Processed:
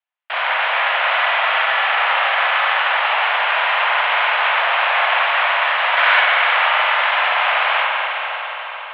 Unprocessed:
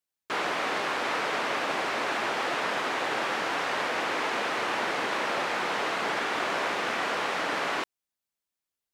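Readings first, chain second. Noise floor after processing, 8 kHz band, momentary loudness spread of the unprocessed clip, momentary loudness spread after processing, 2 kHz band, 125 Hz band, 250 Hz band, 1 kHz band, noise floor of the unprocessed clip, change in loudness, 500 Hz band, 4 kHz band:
−30 dBFS, below −20 dB, 0 LU, 6 LU, +14.5 dB, below −40 dB, below −25 dB, +12.5 dB, below −85 dBFS, +13.0 dB, +6.0 dB, +13.0 dB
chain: gain on a spectral selection 0:05.97–0:06.21, 1,100–2,300 Hz +9 dB
harmonic generator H 6 −8 dB, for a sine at −12.5 dBFS
feedback delay with all-pass diffusion 507 ms, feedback 48%, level −11 dB
spring reverb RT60 3.6 s, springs 43/47 ms, chirp 60 ms, DRR −3 dB
single-sideband voice off tune +220 Hz 400–3,000 Hz
level +5 dB

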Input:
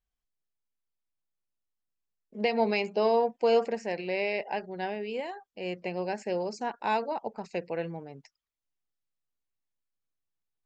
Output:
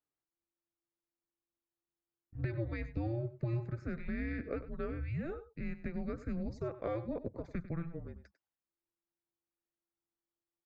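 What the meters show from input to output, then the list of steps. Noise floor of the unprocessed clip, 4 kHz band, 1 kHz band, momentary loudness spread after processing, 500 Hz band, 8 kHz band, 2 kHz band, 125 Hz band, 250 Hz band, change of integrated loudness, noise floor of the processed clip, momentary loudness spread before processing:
below −85 dBFS, below −20 dB, −19.5 dB, 6 LU, −13.5 dB, can't be measured, −12.0 dB, +8.0 dB, −3.5 dB, −9.5 dB, below −85 dBFS, 12 LU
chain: three-way crossover with the lows and the highs turned down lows −19 dB, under 210 Hz, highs −17 dB, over 2,100 Hz
downward compressor 5 to 1, threshold −34 dBFS, peak gain reduction 13 dB
single-tap delay 98 ms −14.5 dB
frequency shifter −340 Hz

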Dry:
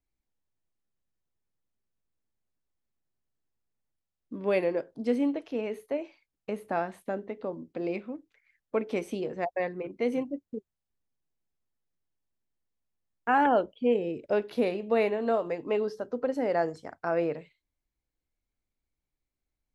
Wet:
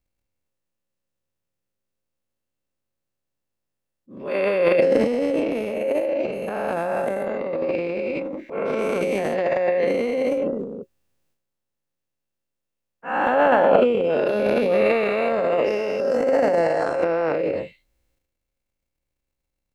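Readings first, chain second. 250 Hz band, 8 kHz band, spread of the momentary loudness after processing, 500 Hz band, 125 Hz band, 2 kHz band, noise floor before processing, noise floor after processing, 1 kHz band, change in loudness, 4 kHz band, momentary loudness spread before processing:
+5.5 dB, can't be measured, 10 LU, +10.0 dB, +7.5 dB, +9.0 dB, below −85 dBFS, −81 dBFS, +6.5 dB, +8.5 dB, +9.5 dB, 11 LU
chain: every bin's largest magnitude spread in time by 480 ms
hollow resonant body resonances 540/2,700 Hz, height 12 dB, ringing for 95 ms
transient designer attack −8 dB, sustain +11 dB
level −3 dB

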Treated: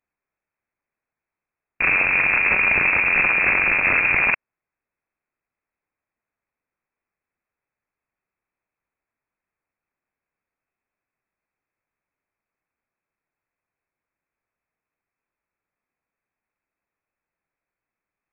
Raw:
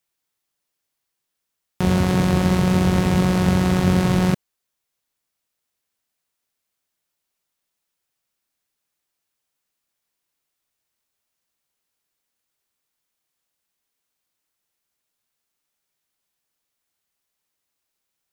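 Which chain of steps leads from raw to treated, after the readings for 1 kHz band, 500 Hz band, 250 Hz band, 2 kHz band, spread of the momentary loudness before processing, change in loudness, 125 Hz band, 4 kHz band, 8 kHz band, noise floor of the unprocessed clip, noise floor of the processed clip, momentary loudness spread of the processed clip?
−0.5 dB, −8.5 dB, −19.5 dB, +16.0 dB, 4 LU, +2.5 dB, −21.5 dB, below −10 dB, below −40 dB, −80 dBFS, below −85 dBFS, 4 LU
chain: wrap-around overflow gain 12 dB
voice inversion scrambler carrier 2,600 Hz

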